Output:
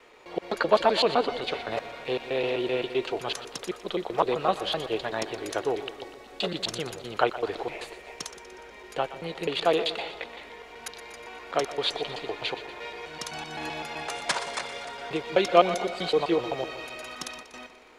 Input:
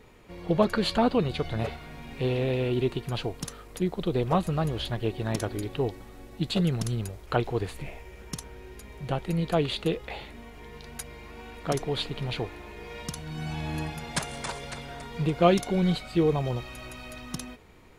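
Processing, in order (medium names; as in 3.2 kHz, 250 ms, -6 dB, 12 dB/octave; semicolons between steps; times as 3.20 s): slices played last to first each 128 ms, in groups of 2; three-band isolator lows -22 dB, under 360 Hz, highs -12 dB, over 7.5 kHz; two-band feedback delay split 630 Hz, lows 159 ms, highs 121 ms, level -13 dB; trim +4.5 dB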